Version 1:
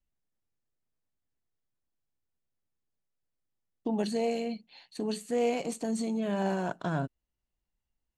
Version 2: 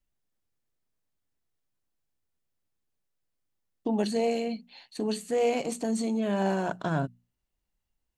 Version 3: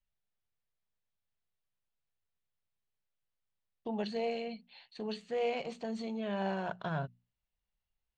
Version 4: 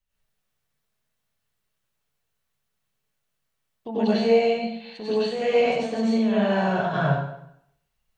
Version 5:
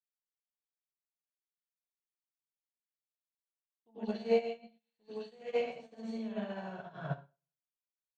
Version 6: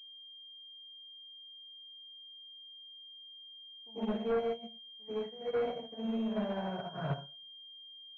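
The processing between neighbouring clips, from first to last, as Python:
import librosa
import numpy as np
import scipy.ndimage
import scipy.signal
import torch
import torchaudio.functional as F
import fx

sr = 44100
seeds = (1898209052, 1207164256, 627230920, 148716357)

y1 = fx.hum_notches(x, sr, base_hz=60, count=4)
y1 = y1 * 10.0 ** (3.0 / 20.0)
y2 = fx.ladder_lowpass(y1, sr, hz=4800.0, resonance_pct=25)
y2 = fx.peak_eq(y2, sr, hz=290.0, db=-13.5, octaves=0.47)
y3 = fx.rev_plate(y2, sr, seeds[0], rt60_s=0.74, hf_ratio=0.85, predelay_ms=80, drr_db=-9.5)
y3 = y3 * 10.0 ** (3.5 / 20.0)
y4 = fx.upward_expand(y3, sr, threshold_db=-42.0, expansion=2.5)
y4 = y4 * 10.0 ** (-8.5 / 20.0)
y5 = 10.0 ** (-34.5 / 20.0) * np.tanh(y4 / 10.0 ** (-34.5 / 20.0))
y5 = fx.pwm(y5, sr, carrier_hz=3200.0)
y5 = y5 * 10.0 ** (7.0 / 20.0)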